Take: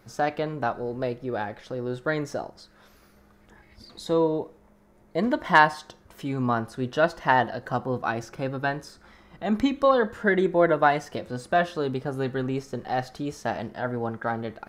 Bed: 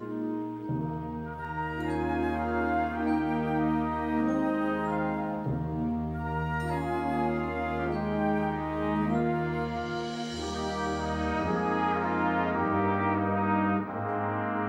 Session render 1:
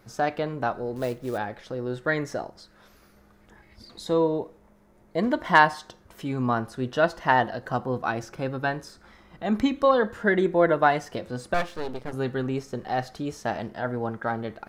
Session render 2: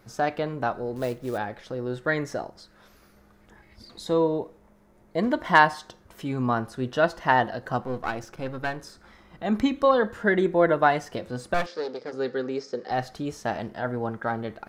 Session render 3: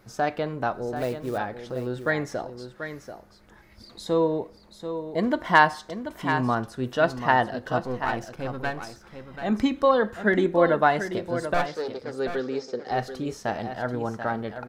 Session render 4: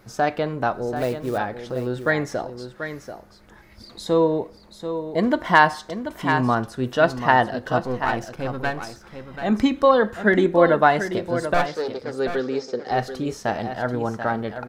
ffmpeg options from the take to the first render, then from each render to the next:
ffmpeg -i in.wav -filter_complex "[0:a]asettb=1/sr,asplit=3[link_01][link_02][link_03];[link_01]atrim=end=0.964[link_04];[link_02]atrim=start=0.96:end=1.38,asetpts=PTS-STARTPTS,afade=type=in:duration=0.004:curve=qsin,afade=type=out:start_time=0.416:duration=0.004:curve=qsin,acrusher=bits=5:mode=log:mix=0:aa=0.000001[link_05];[link_03]atrim=start=1.376[link_06];[link_04][link_05]acrossfade=duration=0.004:curve1=hsin:curve2=qsin[link_07];[link_07][link_06]acrossfade=duration=0.004:curve1=qsin:curve2=hsin,asettb=1/sr,asplit=3[link_08][link_09][link_10];[link_08]atrim=end=1.964[link_11];[link_09]atrim=start=1.96:end=2.44,asetpts=PTS-STARTPTS,afade=type=in:duration=0.004:curve=qsin,afade=type=out:start_time=0.476:duration=0.004:curve=qsin,equalizer=frequency=1900:width_type=o:width=0.39:gain=6[link_12];[link_10]atrim=start=2.436[link_13];[link_11][link_12]acrossfade=duration=0.004:curve1=hsin:curve2=qsin[link_14];[link_14][link_13]acrossfade=duration=0.004:curve1=qsin:curve2=hsin,asettb=1/sr,asplit=3[link_15][link_16][link_17];[link_15]atrim=end=11.544[link_18];[link_16]atrim=start=11.54:end=12.13,asetpts=PTS-STARTPTS,afade=type=in:duration=0.004:curve=qsin,afade=type=out:start_time=0.586:duration=0.004:curve=qsin,aeval=exprs='max(val(0),0)':channel_layout=same[link_19];[link_17]atrim=start=12.126[link_20];[link_18][link_19]acrossfade=duration=0.004:curve1=hsin:curve2=qsin[link_21];[link_21][link_20]acrossfade=duration=0.004:curve1=qsin:curve2=hsin" out.wav
ffmpeg -i in.wav -filter_complex "[0:a]asettb=1/sr,asplit=3[link_01][link_02][link_03];[link_01]atrim=end=7.824[link_04];[link_02]atrim=start=7.82:end=8.82,asetpts=PTS-STARTPTS,afade=type=in:duration=0.004:curve=qsin,afade=type=out:start_time=0.996:duration=0.004:curve=qsin,aeval=exprs='if(lt(val(0),0),0.447*val(0),val(0))':channel_layout=same[link_05];[link_03]atrim=start=8.816[link_06];[link_04][link_05]acrossfade=duration=0.004:curve1=hsin:curve2=qsin[link_07];[link_07][link_06]acrossfade=duration=0.004:curve1=qsin:curve2=hsin,asettb=1/sr,asplit=3[link_08][link_09][link_10];[link_08]atrim=end=11.664[link_11];[link_09]atrim=start=11.66:end=12.91,asetpts=PTS-STARTPTS,afade=type=in:duration=0.004:curve=qsin,afade=type=out:start_time=1.246:duration=0.004:curve=qsin,highpass=290,equalizer=frequency=480:width_type=q:width=4:gain=8,equalizer=frequency=690:width_type=q:width=4:gain=-4,equalizer=frequency=990:width_type=q:width=4:gain=-6,equalizer=frequency=2800:width_type=q:width=4:gain=-6,equalizer=frequency=4900:width_type=q:width=4:gain=10,lowpass=frequency=6500:width=0.5412,lowpass=frequency=6500:width=1.3066[link_12];[link_10]atrim=start=12.906[link_13];[link_11][link_12]acrossfade=duration=0.004:curve1=hsin:curve2=qsin[link_14];[link_14][link_13]acrossfade=duration=0.004:curve1=qsin:curve2=hsin" out.wav
ffmpeg -i in.wav -af "aecho=1:1:736:0.335" out.wav
ffmpeg -i in.wav -af "volume=4dB,alimiter=limit=-2dB:level=0:latency=1" out.wav

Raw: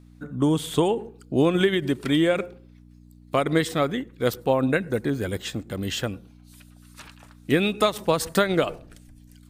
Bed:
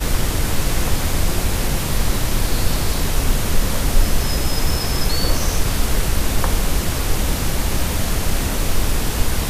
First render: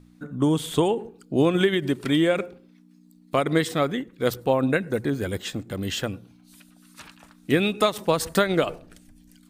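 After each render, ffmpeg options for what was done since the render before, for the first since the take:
ffmpeg -i in.wav -af "bandreject=frequency=60:width_type=h:width=4,bandreject=frequency=120:width_type=h:width=4" out.wav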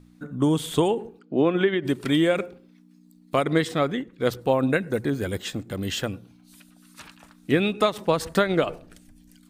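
ffmpeg -i in.wav -filter_complex "[0:a]asplit=3[link_01][link_02][link_03];[link_01]afade=type=out:start_time=1.18:duration=0.02[link_04];[link_02]highpass=190,lowpass=2600,afade=type=in:start_time=1.18:duration=0.02,afade=type=out:start_time=1.84:duration=0.02[link_05];[link_03]afade=type=in:start_time=1.84:duration=0.02[link_06];[link_04][link_05][link_06]amix=inputs=3:normalize=0,asettb=1/sr,asplit=3[link_07][link_08][link_09];[link_07]atrim=end=3.464[link_10];[link_08]atrim=start=3.46:end=4.45,asetpts=PTS-STARTPTS,afade=type=in:duration=0.004:curve=qsin,afade=type=out:start_time=0.986:duration=0.004:curve=qsin,highshelf=frequency=9000:gain=-10[link_11];[link_09]atrim=start=4.446[link_12];[link_10][link_11]acrossfade=duration=0.004:curve1=hsin:curve2=qsin[link_13];[link_13][link_12]acrossfade=duration=0.004:curve1=qsin:curve2=hsin,asettb=1/sr,asplit=3[link_14][link_15][link_16];[link_14]atrim=end=7.504[link_17];[link_15]atrim=start=7.5:end=8.73,asetpts=PTS-STARTPTS,afade=type=in:duration=0.004:curve=qsin,afade=type=out:start_time=1.226:duration=0.004:curve=qsin,highshelf=frequency=6000:gain=-9[link_18];[link_16]atrim=start=8.726[link_19];[link_17][link_18]acrossfade=duration=0.004:curve1=hsin:curve2=qsin[link_20];[link_20][link_19]acrossfade=duration=0.004:curve1=qsin:curve2=hsin" out.wav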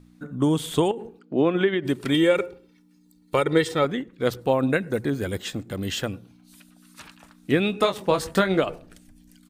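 ffmpeg -i in.wav -filter_complex "[0:a]asettb=1/sr,asplit=3[link_01][link_02][link_03];[link_01]atrim=end=0.914[link_04];[link_02]atrim=start=0.91:end=1.33,asetpts=PTS-STARTPTS,afade=type=in:duration=0.004:curve=qsin,afade=type=out:start_time=0.416:duration=0.004:curve=qsin,acompressor=threshold=-29dB:ratio=6:attack=3.2:release=140:knee=1:detection=peak[link_05];[link_03]atrim=start=1.326[link_06];[link_04][link_05]acrossfade=duration=0.004:curve1=hsin:curve2=qsin[link_07];[link_07][link_06]acrossfade=duration=0.004:curve1=qsin:curve2=hsin,asettb=1/sr,asplit=3[link_08][link_09][link_10];[link_08]atrim=end=2.144[link_11];[link_09]atrim=start=2.14:end=3.85,asetpts=PTS-STARTPTS,afade=type=in:duration=0.004:curve=qsin,afade=type=out:start_time=1.706:duration=0.004:curve=qsin,aecho=1:1:2.2:0.65,atrim=end_sample=75411[link_12];[link_10]atrim=start=3.846[link_13];[link_11][link_12]acrossfade=duration=0.004:curve1=hsin:curve2=qsin[link_14];[link_14][link_13]acrossfade=duration=0.004:curve1=qsin:curve2=hsin,asplit=3[link_15][link_16][link_17];[link_15]afade=type=out:start_time=7.72:duration=0.02[link_18];[link_16]asplit=2[link_19][link_20];[link_20]adelay=21,volume=-7dB[link_21];[link_19][link_21]amix=inputs=2:normalize=0,afade=type=in:start_time=7.72:duration=0.02,afade=type=out:start_time=8.59:duration=0.02[link_22];[link_17]afade=type=in:start_time=8.59:duration=0.02[link_23];[link_18][link_22][link_23]amix=inputs=3:normalize=0" out.wav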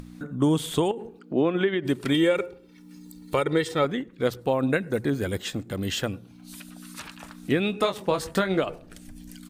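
ffmpeg -i in.wav -af "alimiter=limit=-12dB:level=0:latency=1:release=331,acompressor=mode=upward:threshold=-32dB:ratio=2.5" out.wav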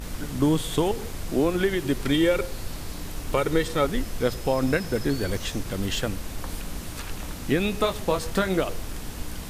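ffmpeg -i in.wav -i bed.wav -filter_complex "[1:a]volume=-15.5dB[link_01];[0:a][link_01]amix=inputs=2:normalize=0" out.wav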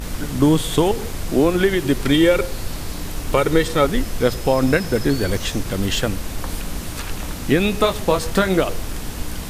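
ffmpeg -i in.wav -af "volume=6.5dB" out.wav

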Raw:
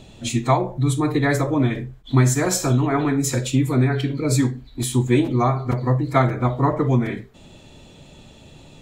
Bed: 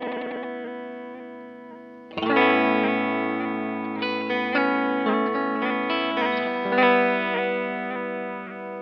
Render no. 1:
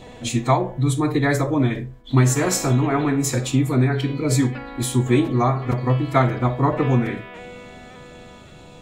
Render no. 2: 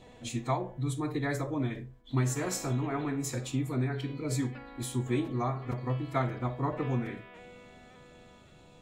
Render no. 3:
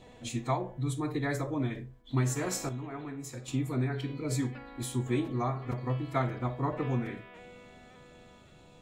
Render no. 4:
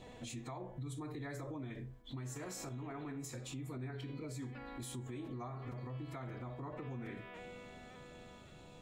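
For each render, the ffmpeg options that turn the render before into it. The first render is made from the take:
ffmpeg -i in.wav -i bed.wav -filter_complex "[1:a]volume=-14dB[link_01];[0:a][link_01]amix=inputs=2:normalize=0" out.wav
ffmpeg -i in.wav -af "volume=-12.5dB" out.wav
ffmpeg -i in.wav -filter_complex "[0:a]asplit=3[link_01][link_02][link_03];[link_01]atrim=end=2.692[link_04];[link_02]atrim=start=2.688:end=3.482,asetpts=PTS-STARTPTS,volume=-7.5dB[link_05];[link_03]atrim=start=3.478[link_06];[link_04][link_05]acrossfade=duration=0.004:curve1=hsin:curve2=hsin[link_07];[link_07][link_06]acrossfade=duration=0.004:curve1=hsin:curve2=hsin" out.wav
ffmpeg -i in.wav -af "acompressor=threshold=-39dB:ratio=4,alimiter=level_in=12.5dB:limit=-24dB:level=0:latency=1:release=42,volume=-12.5dB" out.wav

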